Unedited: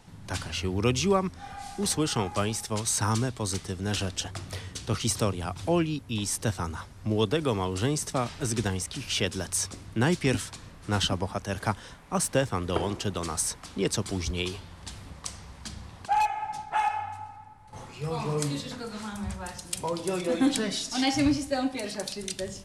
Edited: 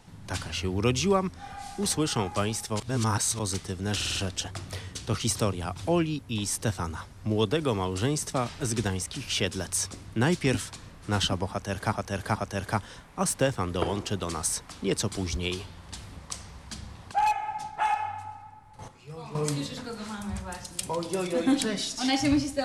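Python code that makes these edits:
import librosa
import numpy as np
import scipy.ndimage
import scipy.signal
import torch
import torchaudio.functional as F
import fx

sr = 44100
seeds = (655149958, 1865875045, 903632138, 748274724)

y = fx.edit(x, sr, fx.reverse_span(start_s=2.8, length_s=0.59),
    fx.stutter(start_s=3.95, slice_s=0.05, count=5),
    fx.repeat(start_s=11.3, length_s=0.43, count=3),
    fx.clip_gain(start_s=17.82, length_s=0.47, db=-9.5), tone=tone)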